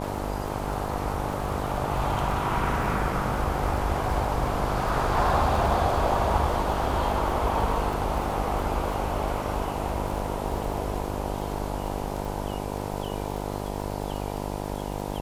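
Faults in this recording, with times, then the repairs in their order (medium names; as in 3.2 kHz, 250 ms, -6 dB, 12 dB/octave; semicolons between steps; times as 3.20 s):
buzz 50 Hz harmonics 20 -32 dBFS
crackle 38 per s -32 dBFS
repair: de-click; de-hum 50 Hz, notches 20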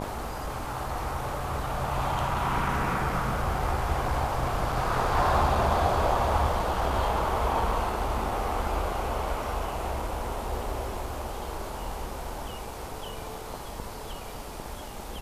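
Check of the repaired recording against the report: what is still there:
nothing left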